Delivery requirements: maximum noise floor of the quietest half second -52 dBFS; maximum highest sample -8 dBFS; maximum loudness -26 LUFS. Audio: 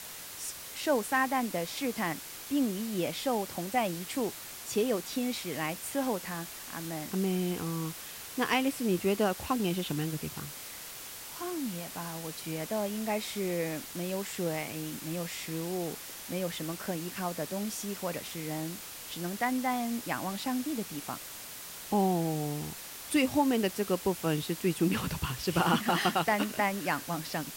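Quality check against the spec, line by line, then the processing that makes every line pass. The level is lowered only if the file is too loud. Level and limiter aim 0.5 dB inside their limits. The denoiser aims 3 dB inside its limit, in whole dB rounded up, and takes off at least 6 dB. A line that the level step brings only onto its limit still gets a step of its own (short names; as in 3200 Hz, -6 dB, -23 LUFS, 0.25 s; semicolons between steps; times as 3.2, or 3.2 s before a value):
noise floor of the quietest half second -44 dBFS: fail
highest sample -15.5 dBFS: OK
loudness -32.5 LUFS: OK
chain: denoiser 11 dB, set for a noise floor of -44 dBFS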